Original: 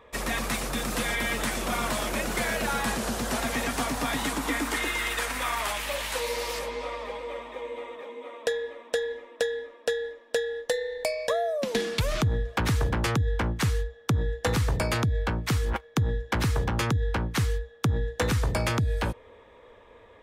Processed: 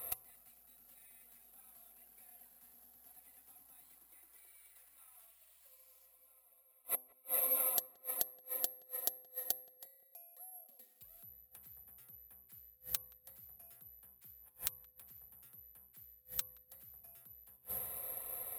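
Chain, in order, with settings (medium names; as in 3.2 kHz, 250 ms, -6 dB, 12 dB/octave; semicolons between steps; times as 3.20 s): Schroeder reverb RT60 1.2 s, combs from 28 ms, DRR 13.5 dB; inverted gate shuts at -29 dBFS, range -40 dB; peaking EQ 660 Hz +9 dB 0.21 oct; comb of notches 280 Hz; de-hum 116.6 Hz, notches 9; careless resampling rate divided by 4×, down filtered, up zero stuff; treble shelf 3.4 kHz +10 dB; filtered feedback delay 189 ms, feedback 62%, low-pass 1.4 kHz, level -22 dB; speed mistake 44.1 kHz file played as 48 kHz; trim -5 dB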